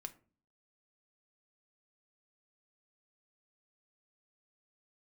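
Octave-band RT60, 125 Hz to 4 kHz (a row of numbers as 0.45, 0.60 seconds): 0.65, 0.60, 0.45, 0.35, 0.30, 0.20 seconds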